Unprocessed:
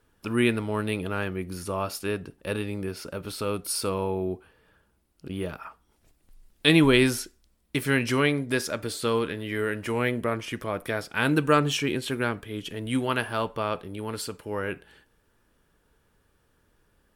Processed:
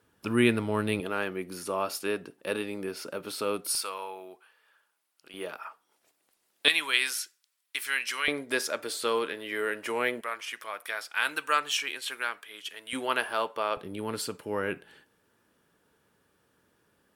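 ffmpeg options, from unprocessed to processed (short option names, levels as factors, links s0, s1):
-af "asetnsamples=n=441:p=0,asendcmd='1 highpass f 270;3.75 highpass f 1000;5.34 highpass f 490;6.68 highpass f 1500;8.28 highpass f 430;10.21 highpass f 1100;12.93 highpass f 460;13.77 highpass f 140',highpass=97"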